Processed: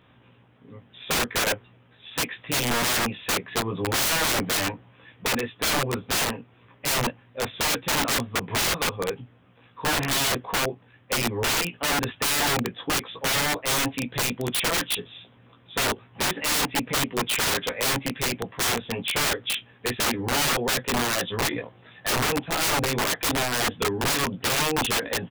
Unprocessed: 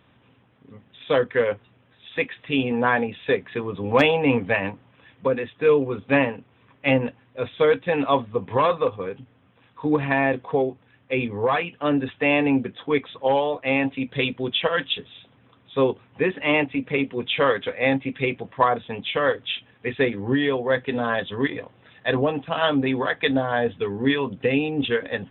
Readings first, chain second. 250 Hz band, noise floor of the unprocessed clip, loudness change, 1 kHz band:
-7.0 dB, -59 dBFS, -1.5 dB, -2.0 dB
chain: doubler 17 ms -4 dB; wrapped overs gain 18.5 dB

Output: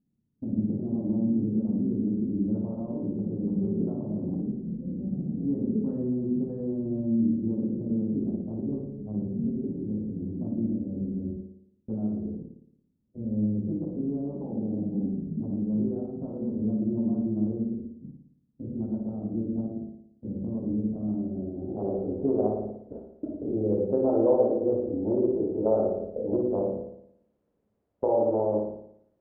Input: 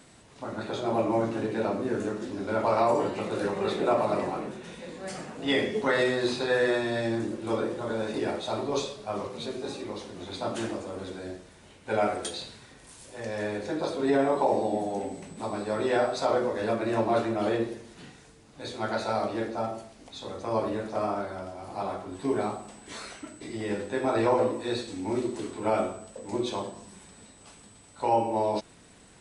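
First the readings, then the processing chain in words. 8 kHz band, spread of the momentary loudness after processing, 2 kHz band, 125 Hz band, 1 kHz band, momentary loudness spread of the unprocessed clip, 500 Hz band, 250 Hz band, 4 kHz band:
under -35 dB, 12 LU, under -40 dB, +6.0 dB, -12.0 dB, 15 LU, -2.0 dB, +5.5 dB, under -40 dB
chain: Wiener smoothing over 41 samples; gate -47 dBFS, range -30 dB; LPF 1300 Hz 24 dB/oct; in parallel at +1.5 dB: limiter -23 dBFS, peak gain reduction 9 dB; on the sum: compressor 2:1, threshold -30 dBFS, peak gain reduction 8 dB; added noise violet -47 dBFS; low-pass sweep 220 Hz -> 530 Hz, 21.08–22.18; on a send: flutter echo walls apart 9.7 m, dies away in 0.72 s; on the sum: mismatched tape noise reduction decoder only

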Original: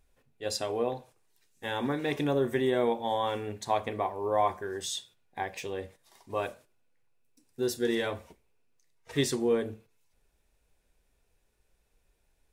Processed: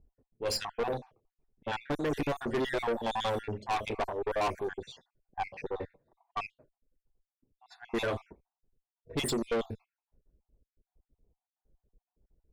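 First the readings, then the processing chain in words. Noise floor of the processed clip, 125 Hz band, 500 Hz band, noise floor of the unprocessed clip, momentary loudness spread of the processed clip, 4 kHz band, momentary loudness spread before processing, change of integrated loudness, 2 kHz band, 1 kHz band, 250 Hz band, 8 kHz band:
under -85 dBFS, -2.5 dB, -4.0 dB, -72 dBFS, 13 LU, -2.0 dB, 12 LU, -3.0 dB, -0.5 dB, -2.5 dB, -4.0 dB, -4.5 dB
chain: random spectral dropouts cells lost 56%; low-pass opened by the level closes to 350 Hz, open at -29 dBFS; tube stage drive 34 dB, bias 0.5; gain +7.5 dB

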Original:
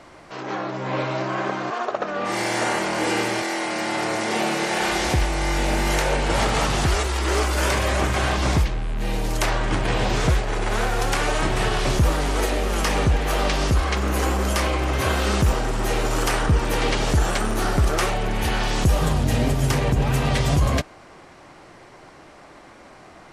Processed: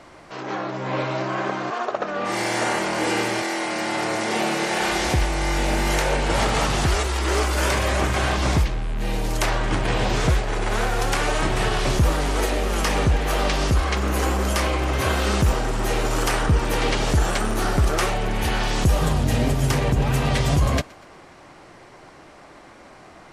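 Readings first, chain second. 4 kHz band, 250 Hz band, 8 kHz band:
0.0 dB, 0.0 dB, 0.0 dB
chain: thinning echo 0.121 s, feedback 54%, level -24 dB

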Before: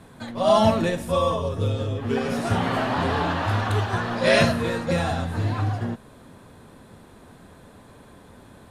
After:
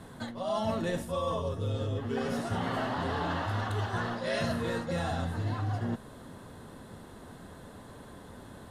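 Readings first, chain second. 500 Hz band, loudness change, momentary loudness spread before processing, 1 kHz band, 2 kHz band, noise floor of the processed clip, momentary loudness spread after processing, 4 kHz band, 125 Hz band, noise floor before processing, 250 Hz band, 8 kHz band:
-10.5 dB, -9.5 dB, 8 LU, -9.5 dB, -10.0 dB, -49 dBFS, 17 LU, -10.5 dB, -8.0 dB, -49 dBFS, -8.5 dB, -9.0 dB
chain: notch 2400 Hz, Q 7.6; reverse; compressor 6:1, threshold -29 dBFS, peak gain reduction 15 dB; reverse

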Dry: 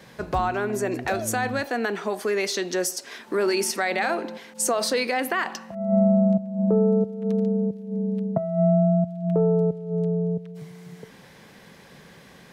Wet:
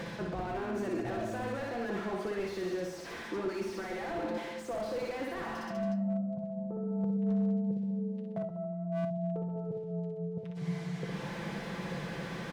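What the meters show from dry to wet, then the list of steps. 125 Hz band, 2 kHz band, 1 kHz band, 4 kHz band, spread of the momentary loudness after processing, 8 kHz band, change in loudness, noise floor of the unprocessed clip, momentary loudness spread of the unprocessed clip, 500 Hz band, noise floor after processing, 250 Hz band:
-10.5 dB, -12.5 dB, -11.5 dB, -14.5 dB, 6 LU, under -20 dB, -11.5 dB, -49 dBFS, 10 LU, -11.5 dB, -42 dBFS, -9.5 dB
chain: comb 5.9 ms, depth 49%; in parallel at -2.5 dB: upward compressor, threshold -23 dBFS; on the sum: limiter -13 dBFS, peak gain reduction 10 dB; reverse; compressor 8:1, threshold -28 dBFS, peak gain reduction 11.5 dB; reverse; flange 0.43 Hz, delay 4.2 ms, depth 6.2 ms, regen -69%; air absorption 68 m; reverse bouncing-ball echo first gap 60 ms, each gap 1.1×, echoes 5; slew limiter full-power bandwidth 15 Hz

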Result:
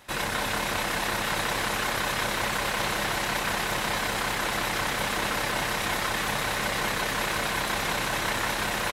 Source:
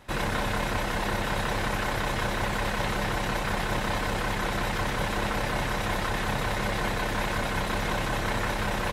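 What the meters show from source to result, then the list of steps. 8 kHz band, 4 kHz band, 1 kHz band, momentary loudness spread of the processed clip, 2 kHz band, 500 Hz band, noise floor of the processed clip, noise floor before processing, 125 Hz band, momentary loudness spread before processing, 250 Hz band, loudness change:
+7.0 dB, +5.0 dB, +1.0 dB, 0 LU, +3.0 dB, -1.0 dB, -30 dBFS, -30 dBFS, -6.0 dB, 0 LU, -3.0 dB, +1.5 dB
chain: tilt +2 dB/oct; on a send: frequency-shifting echo 0.307 s, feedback 61%, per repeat +120 Hz, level -7.5 dB

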